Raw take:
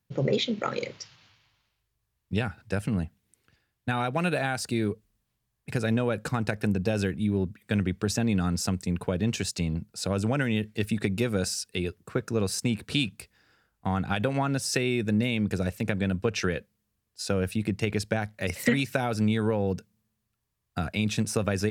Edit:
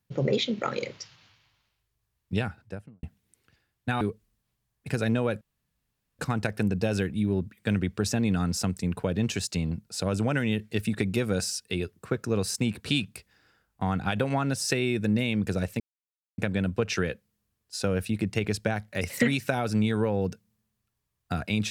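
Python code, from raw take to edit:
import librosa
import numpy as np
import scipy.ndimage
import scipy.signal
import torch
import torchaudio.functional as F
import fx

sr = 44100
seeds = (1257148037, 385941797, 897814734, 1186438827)

y = fx.studio_fade_out(x, sr, start_s=2.35, length_s=0.68)
y = fx.edit(y, sr, fx.cut(start_s=4.01, length_s=0.82),
    fx.insert_room_tone(at_s=6.23, length_s=0.78),
    fx.insert_silence(at_s=15.84, length_s=0.58), tone=tone)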